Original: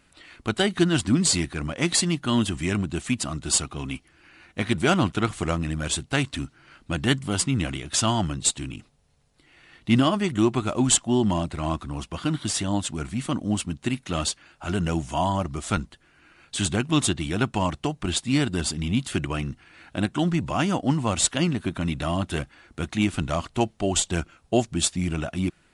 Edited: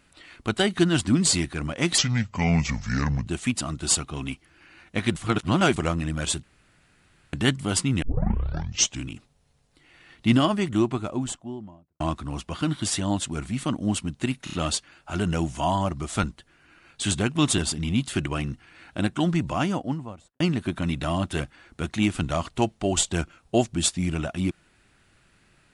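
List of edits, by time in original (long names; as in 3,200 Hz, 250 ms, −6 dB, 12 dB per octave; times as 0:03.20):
0:01.98–0:02.89: play speed 71%
0:04.79–0:05.39: reverse
0:06.06–0:06.96: fill with room tone
0:07.65: tape start 1.03 s
0:10.04–0:11.63: fade out and dull
0:14.07: stutter 0.03 s, 4 plays
0:17.12–0:18.57: remove
0:20.42–0:21.39: fade out and dull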